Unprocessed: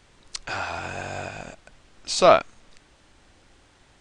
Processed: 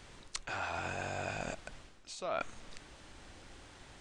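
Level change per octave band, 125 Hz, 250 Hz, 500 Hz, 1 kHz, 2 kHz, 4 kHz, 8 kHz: −7.5, −12.5, −18.5, −15.0, −8.5, −15.0, −12.5 decibels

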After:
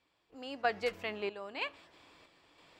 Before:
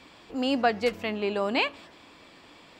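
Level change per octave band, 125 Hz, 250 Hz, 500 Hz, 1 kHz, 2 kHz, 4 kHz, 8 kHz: −13.5 dB, −18.0 dB, −10.0 dB, −9.0 dB, −7.5 dB, −11.0 dB, can't be measured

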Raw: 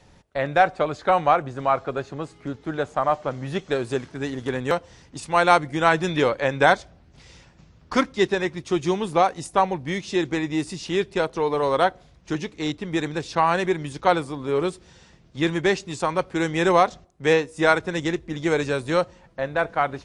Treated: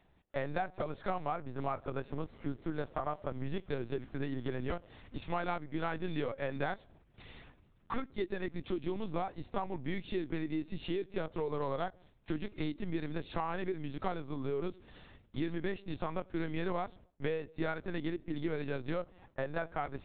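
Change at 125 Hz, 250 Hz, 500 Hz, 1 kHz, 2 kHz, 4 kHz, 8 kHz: −9.5 dB, −11.5 dB, −15.0 dB, −17.5 dB, −17.5 dB, −18.0 dB, below −40 dB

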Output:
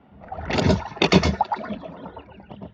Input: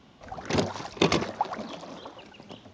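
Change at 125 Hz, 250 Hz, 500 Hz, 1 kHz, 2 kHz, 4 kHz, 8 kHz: +11.0, +7.5, +5.5, +6.0, +7.0, +5.5, +1.5 decibels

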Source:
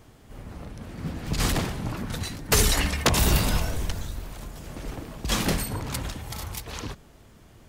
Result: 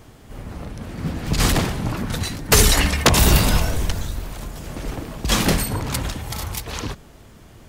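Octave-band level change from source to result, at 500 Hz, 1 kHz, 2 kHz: +6.5, +6.5, +6.5 decibels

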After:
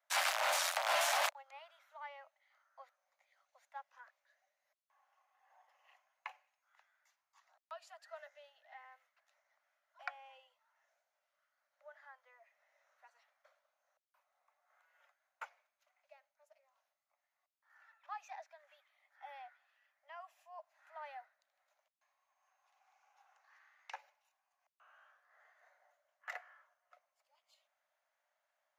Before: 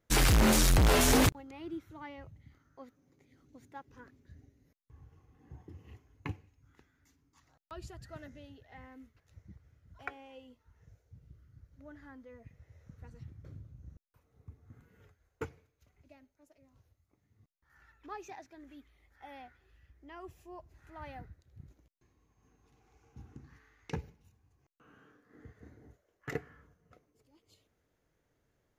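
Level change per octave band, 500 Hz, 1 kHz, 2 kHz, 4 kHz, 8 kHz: −9.0, −2.0, −2.5, −5.0, −8.0 decibels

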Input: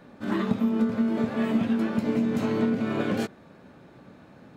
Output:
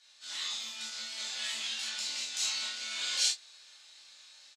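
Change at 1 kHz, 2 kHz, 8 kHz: −14.5 dB, −2.5 dB, can't be measured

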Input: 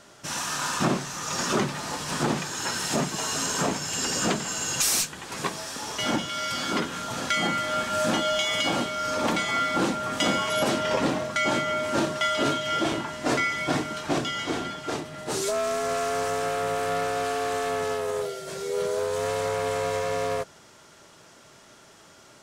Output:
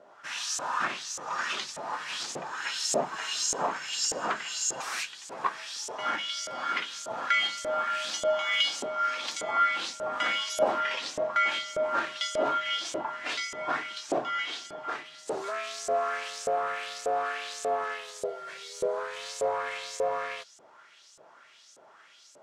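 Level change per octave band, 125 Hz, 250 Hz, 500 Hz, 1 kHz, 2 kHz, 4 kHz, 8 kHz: −20.5, −15.5, −4.5, −2.5, −2.0, −2.5, −5.0 decibels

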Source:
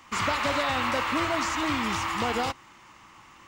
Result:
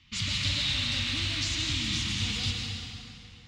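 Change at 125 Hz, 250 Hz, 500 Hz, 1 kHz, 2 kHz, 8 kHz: +6.5, −6.5, −19.5, −20.5, −5.0, +2.5 decibels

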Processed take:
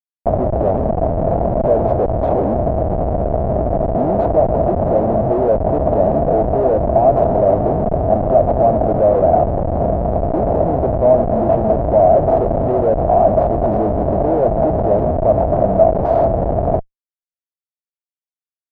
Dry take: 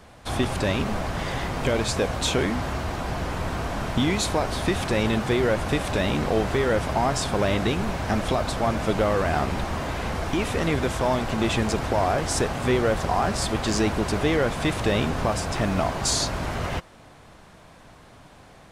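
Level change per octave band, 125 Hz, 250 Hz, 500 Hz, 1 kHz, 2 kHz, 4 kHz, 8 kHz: +7.0 dB, +6.0 dB, +13.0 dB, +9.5 dB, below −10 dB, below −25 dB, below −35 dB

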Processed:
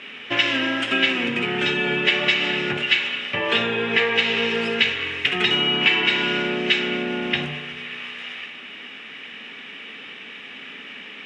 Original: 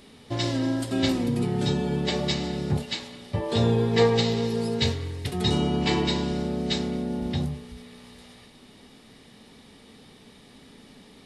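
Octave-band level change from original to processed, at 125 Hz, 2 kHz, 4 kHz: −9.5, +17.5, +10.5 decibels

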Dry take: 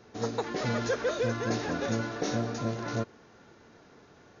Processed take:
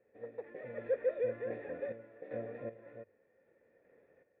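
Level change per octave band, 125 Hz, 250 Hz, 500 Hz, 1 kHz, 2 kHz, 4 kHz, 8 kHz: −21.0 dB, −18.0 dB, −5.0 dB, −20.5 dB, −15.0 dB, below −35 dB, can't be measured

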